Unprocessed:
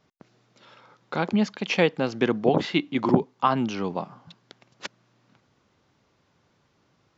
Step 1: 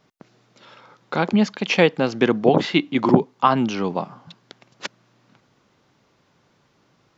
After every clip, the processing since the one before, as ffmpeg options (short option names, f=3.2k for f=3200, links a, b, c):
-af "equalizer=f=76:w=2.8:g=-9.5,volume=5dB"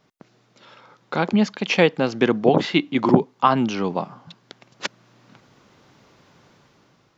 -af "dynaudnorm=f=430:g=5:m=11dB,volume=-1dB"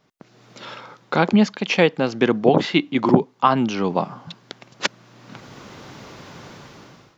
-af "dynaudnorm=f=170:g=5:m=15dB,volume=-1dB"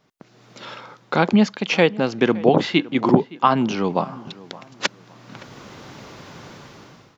-filter_complex "[0:a]asplit=2[a][b];[b]adelay=566,lowpass=f=2.5k:p=1,volume=-20dB,asplit=2[c][d];[d]adelay=566,lowpass=f=2.5k:p=1,volume=0.32,asplit=2[e][f];[f]adelay=566,lowpass=f=2.5k:p=1,volume=0.32[g];[a][c][e][g]amix=inputs=4:normalize=0"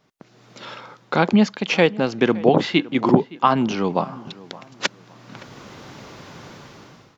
-ar 48000 -c:a aac -b:a 128k